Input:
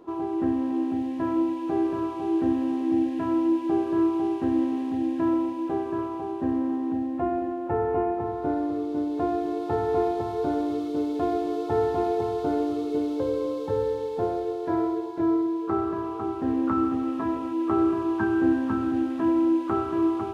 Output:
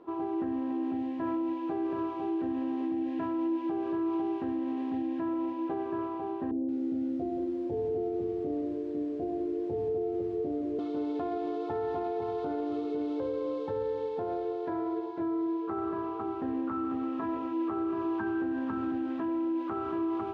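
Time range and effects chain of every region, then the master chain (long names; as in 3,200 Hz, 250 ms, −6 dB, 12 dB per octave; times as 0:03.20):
0:06.51–0:10.79: Butterworth low-pass 600 Hz + feedback echo at a low word length 175 ms, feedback 35%, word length 8 bits, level −8.5 dB
whole clip: low-pass filter 3,400 Hz 12 dB per octave; low-shelf EQ 150 Hz −7.5 dB; brickwall limiter −22.5 dBFS; level −2.5 dB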